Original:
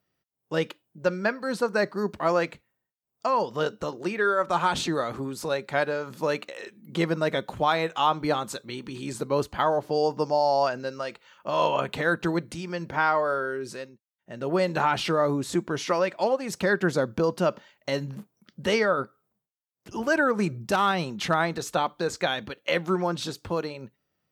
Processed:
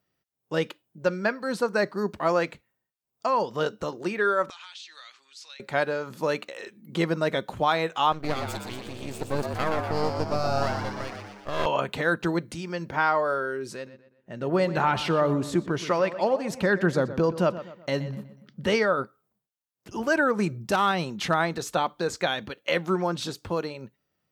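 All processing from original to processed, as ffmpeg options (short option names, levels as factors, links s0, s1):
-filter_complex "[0:a]asettb=1/sr,asplit=3[s0][s1][s2];[s0]atrim=end=4.504[s3];[s1]atrim=start=4.5:end=5.6,asetpts=PTS-STARTPTS,afade=t=in:d=0.004:c=qsin,afade=t=out:st=1.096:d=0.004:c=qsin,asuperpass=centerf=3900:order=4:qfactor=0.99,acompressor=threshold=0.01:ratio=6:attack=3.2:release=140:knee=1:detection=peak[s4];[s2]atrim=start=5.596[s5];[s3][s4]acrossfade=d=0.004:c1=hsin:c2=qsin[s6];[s6][s5]acrossfade=d=0.004:c1=qsin:c2=hsin,asettb=1/sr,asplit=3[s7][s8][s9];[s7]atrim=end=8.124[s10];[s8]atrim=start=8.12:end=11.66,asetpts=PTS-STARTPTS,afade=t=in:d=0.004:c=qsin,afade=t=out:st=3.536:d=0.004:c=qsin,bandreject=f=890:w=5.2,aeval=exprs='max(val(0),0)':c=same,asplit=8[s11][s12][s13][s14][s15][s16][s17][s18];[s12]adelay=120,afreqshift=100,volume=0.531[s19];[s13]adelay=240,afreqshift=200,volume=0.292[s20];[s14]adelay=360,afreqshift=300,volume=0.16[s21];[s15]adelay=480,afreqshift=400,volume=0.0881[s22];[s16]adelay=600,afreqshift=500,volume=0.0484[s23];[s17]adelay=720,afreqshift=600,volume=0.0266[s24];[s18]adelay=840,afreqshift=700,volume=0.0146[s25];[s11][s19][s20][s21][s22][s23][s24][s25]amix=inputs=8:normalize=0,atrim=end_sample=156114[s26];[s9]atrim=start=11.656[s27];[s10][s26]acrossfade=d=0.004:c1=hsin:c2=qsin[s28];[s28][s27]acrossfade=d=0.004:c1=qsin:c2=hsin,asettb=1/sr,asplit=3[s29][s30][s31];[s29]atrim=end=13.744[s32];[s30]atrim=start=13.74:end=18.75,asetpts=PTS-STARTPTS,afade=t=in:d=0.004:c=qsin,afade=t=out:st=5.006:d=0.004:c=qsin,bass=f=250:g=3,treble=f=4000:g=-4,asplit=2[s33][s34];[s34]adelay=123,lowpass=f=3900:p=1,volume=0.211,asplit=2[s35][s36];[s36]adelay=123,lowpass=f=3900:p=1,volume=0.41,asplit=2[s37][s38];[s38]adelay=123,lowpass=f=3900:p=1,volume=0.41,asplit=2[s39][s40];[s40]adelay=123,lowpass=f=3900:p=1,volume=0.41[s41];[s33][s35][s37][s39][s41]amix=inputs=5:normalize=0,atrim=end_sample=220941[s42];[s31]atrim=start=18.746[s43];[s32][s42]acrossfade=d=0.004:c1=hsin:c2=qsin[s44];[s44][s43]acrossfade=d=0.004:c1=qsin:c2=hsin"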